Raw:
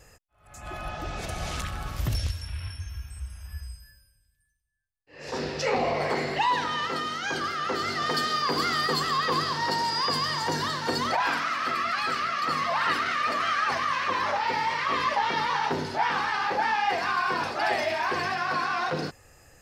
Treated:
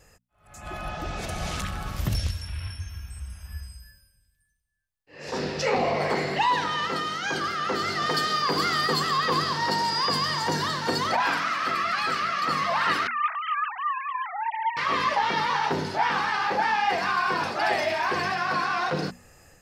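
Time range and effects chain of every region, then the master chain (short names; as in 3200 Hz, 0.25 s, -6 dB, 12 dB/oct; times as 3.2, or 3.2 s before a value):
13.07–14.77 sine-wave speech + HPF 1100 Hz
whole clip: bell 190 Hz +7 dB 0.3 oct; notches 60/120/180/240 Hz; AGC gain up to 4 dB; gain -2.5 dB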